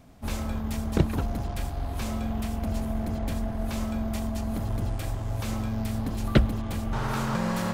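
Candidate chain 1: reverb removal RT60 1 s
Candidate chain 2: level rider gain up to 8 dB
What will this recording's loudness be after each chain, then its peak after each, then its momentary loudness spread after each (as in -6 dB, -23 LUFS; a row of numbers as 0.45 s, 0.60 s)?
-32.0 LUFS, -23.0 LUFS; -6.5 dBFS, -1.5 dBFS; 8 LU, 6 LU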